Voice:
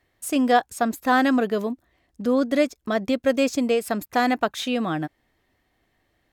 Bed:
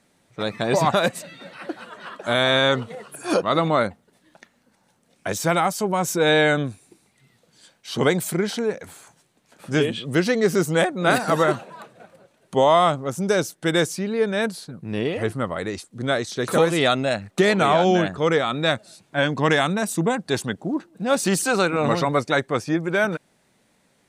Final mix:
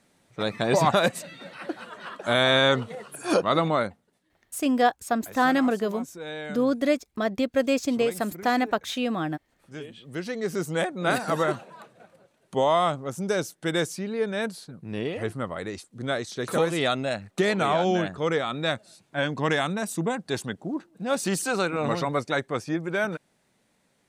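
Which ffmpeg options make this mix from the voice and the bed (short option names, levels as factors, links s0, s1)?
-filter_complex "[0:a]adelay=4300,volume=0.75[s0];[1:a]volume=3.76,afade=t=out:st=3.47:d=0.89:silence=0.141254,afade=t=in:st=9.9:d=1.09:silence=0.223872[s1];[s0][s1]amix=inputs=2:normalize=0"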